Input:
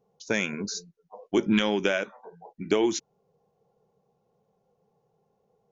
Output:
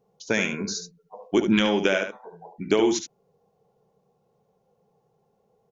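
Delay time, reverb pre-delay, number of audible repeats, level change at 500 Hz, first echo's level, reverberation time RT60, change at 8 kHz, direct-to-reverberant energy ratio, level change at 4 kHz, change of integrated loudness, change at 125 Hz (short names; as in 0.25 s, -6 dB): 72 ms, none, 1, +3.0 dB, -8.0 dB, none, n/a, none, +3.0 dB, +3.0 dB, +3.0 dB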